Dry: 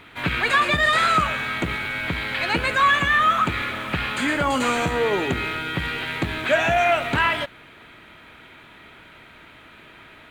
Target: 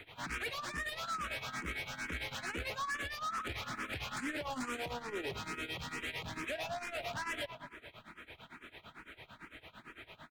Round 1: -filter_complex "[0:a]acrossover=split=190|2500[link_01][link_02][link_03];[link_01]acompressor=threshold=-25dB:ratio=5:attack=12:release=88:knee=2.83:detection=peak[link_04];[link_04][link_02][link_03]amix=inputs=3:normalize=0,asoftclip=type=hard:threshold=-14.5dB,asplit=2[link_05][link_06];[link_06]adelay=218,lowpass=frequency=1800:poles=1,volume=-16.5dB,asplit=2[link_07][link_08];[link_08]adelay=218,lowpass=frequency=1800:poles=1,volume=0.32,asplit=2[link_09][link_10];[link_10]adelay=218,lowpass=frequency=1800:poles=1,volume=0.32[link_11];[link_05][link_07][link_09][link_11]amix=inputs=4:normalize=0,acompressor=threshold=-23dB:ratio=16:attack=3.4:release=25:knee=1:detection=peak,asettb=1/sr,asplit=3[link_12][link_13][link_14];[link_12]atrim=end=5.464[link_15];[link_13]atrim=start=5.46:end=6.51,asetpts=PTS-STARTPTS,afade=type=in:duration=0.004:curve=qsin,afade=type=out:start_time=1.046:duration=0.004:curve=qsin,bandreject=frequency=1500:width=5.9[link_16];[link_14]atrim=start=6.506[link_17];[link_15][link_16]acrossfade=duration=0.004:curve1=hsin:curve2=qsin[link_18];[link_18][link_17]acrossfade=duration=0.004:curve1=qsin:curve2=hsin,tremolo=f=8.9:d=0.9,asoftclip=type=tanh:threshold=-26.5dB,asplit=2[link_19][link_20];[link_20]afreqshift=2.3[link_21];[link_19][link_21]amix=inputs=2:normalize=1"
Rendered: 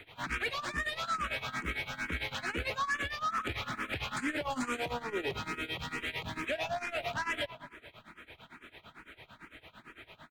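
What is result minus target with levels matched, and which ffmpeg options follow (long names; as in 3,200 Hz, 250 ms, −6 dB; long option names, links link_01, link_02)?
soft clipping: distortion −6 dB
-filter_complex "[0:a]acrossover=split=190|2500[link_01][link_02][link_03];[link_01]acompressor=threshold=-25dB:ratio=5:attack=12:release=88:knee=2.83:detection=peak[link_04];[link_04][link_02][link_03]amix=inputs=3:normalize=0,asoftclip=type=hard:threshold=-14.5dB,asplit=2[link_05][link_06];[link_06]adelay=218,lowpass=frequency=1800:poles=1,volume=-16.5dB,asplit=2[link_07][link_08];[link_08]adelay=218,lowpass=frequency=1800:poles=1,volume=0.32,asplit=2[link_09][link_10];[link_10]adelay=218,lowpass=frequency=1800:poles=1,volume=0.32[link_11];[link_05][link_07][link_09][link_11]amix=inputs=4:normalize=0,acompressor=threshold=-23dB:ratio=16:attack=3.4:release=25:knee=1:detection=peak,asettb=1/sr,asplit=3[link_12][link_13][link_14];[link_12]atrim=end=5.464[link_15];[link_13]atrim=start=5.46:end=6.51,asetpts=PTS-STARTPTS,afade=type=in:duration=0.004:curve=qsin,afade=type=out:start_time=1.046:duration=0.004:curve=qsin,bandreject=frequency=1500:width=5.9[link_16];[link_14]atrim=start=6.506[link_17];[link_15][link_16]acrossfade=duration=0.004:curve1=hsin:curve2=qsin[link_18];[link_18][link_17]acrossfade=duration=0.004:curve1=qsin:curve2=hsin,tremolo=f=8.9:d=0.9,asoftclip=type=tanh:threshold=-34dB,asplit=2[link_19][link_20];[link_20]afreqshift=2.3[link_21];[link_19][link_21]amix=inputs=2:normalize=1"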